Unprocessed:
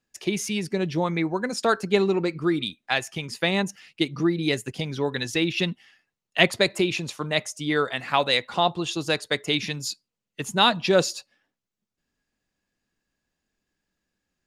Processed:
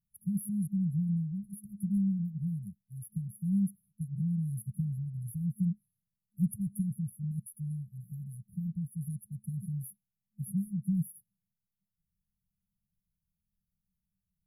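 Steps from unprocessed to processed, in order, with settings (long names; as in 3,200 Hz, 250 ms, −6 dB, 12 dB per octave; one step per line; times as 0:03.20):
brick-wall band-stop 210–10,000 Hz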